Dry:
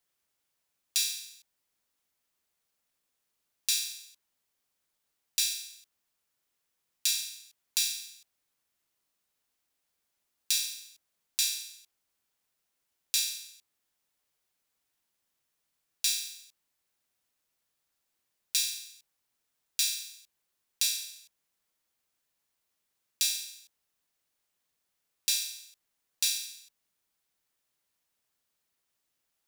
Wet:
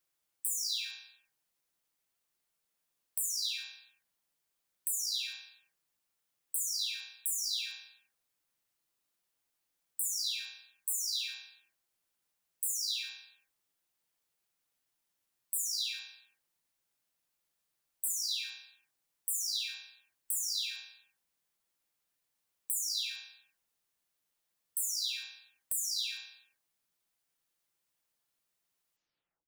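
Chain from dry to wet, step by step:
every frequency bin delayed by itself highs early, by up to 512 ms
level −1.5 dB

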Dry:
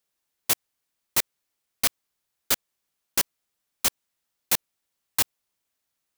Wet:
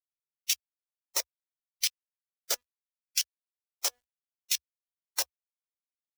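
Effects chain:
spectral magnitudes quantised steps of 15 dB
parametric band 5,600 Hz +11.5 dB 0.48 octaves
notch filter 1,100 Hz, Q 20
hum removal 245.1 Hz, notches 7
harmonic and percussive parts rebalanced harmonic −16 dB
downward compressor 3 to 1, threshold −20 dBFS, peak gain reduction 5 dB
auto-filter high-pass square 0.68 Hz 520–2,800 Hz
bit reduction 11 bits
low shelf with overshoot 100 Hz +12 dB, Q 3
level −6 dB

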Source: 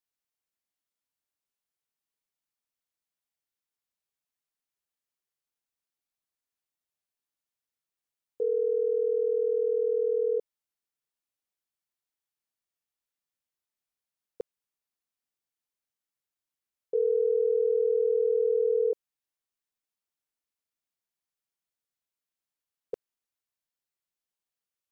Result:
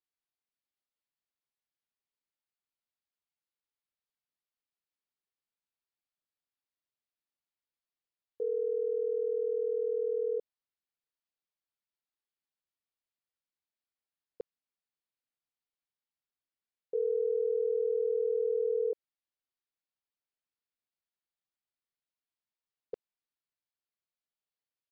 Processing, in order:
downsampling to 11,025 Hz
level −5 dB

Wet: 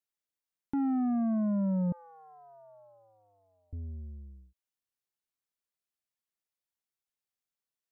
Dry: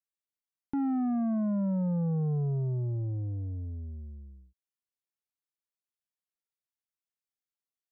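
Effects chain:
0:01.92–0:03.73: elliptic high-pass filter 610 Hz, stop band 40 dB

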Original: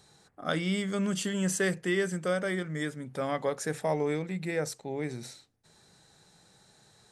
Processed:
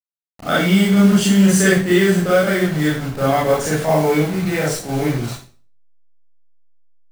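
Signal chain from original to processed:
hold until the input has moved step −38 dBFS
parametric band 190 Hz +3.5 dB 0.28 octaves
convolution reverb RT60 0.40 s, pre-delay 29 ms, DRR −8 dB
level +5.5 dB

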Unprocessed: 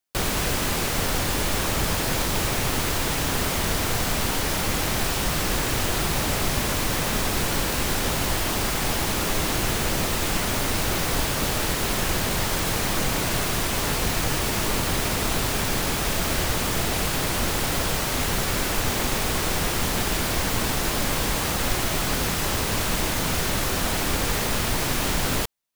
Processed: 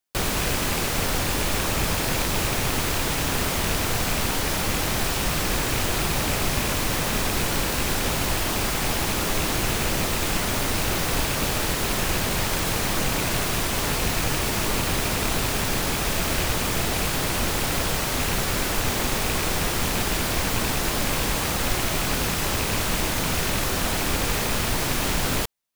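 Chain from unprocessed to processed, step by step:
loose part that buzzes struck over −25 dBFS, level −20 dBFS

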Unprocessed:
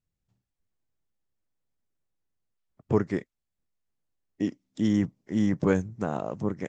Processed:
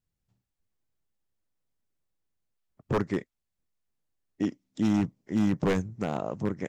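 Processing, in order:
wave folding −17.5 dBFS

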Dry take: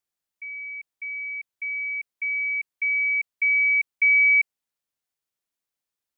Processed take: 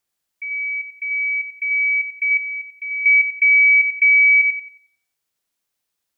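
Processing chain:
on a send: delay with a high-pass on its return 90 ms, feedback 31%, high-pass 2,300 Hz, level −4 dB
on the sum: brickwall limiter −16.5 dBFS, peak gain reduction 6 dB
0:02.37–0:03.06: parametric band 2,100 Hz −13 dB 0.81 octaves
level +7.5 dB

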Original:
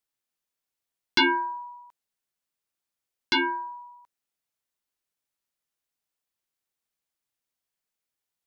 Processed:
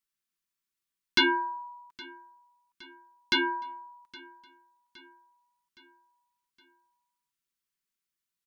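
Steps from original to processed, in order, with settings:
flat-topped bell 620 Hz −13.5 dB 1.1 octaves
comb filter 5.2 ms, depth 35%
repeating echo 816 ms, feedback 54%, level −22 dB
level −2 dB

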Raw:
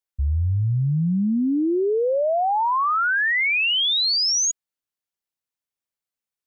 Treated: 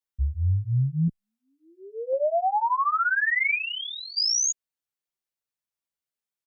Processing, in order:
0:01.08–0:02.13: Butterworth high-pass 530 Hz 48 dB per octave
0:03.55–0:04.17: high-frequency loss of the air 460 metres
barber-pole flanger 9.5 ms −1.8 Hz

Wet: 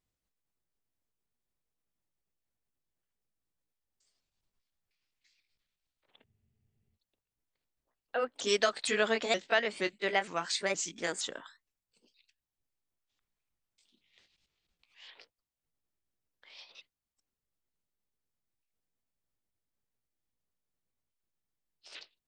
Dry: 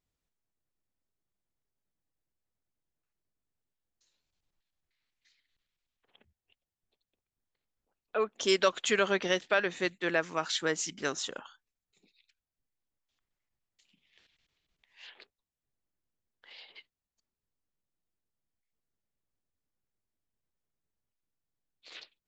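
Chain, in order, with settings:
pitch shifter swept by a sawtooth +4 semitones, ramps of 467 ms
frozen spectrum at 0:06.26, 0.69 s

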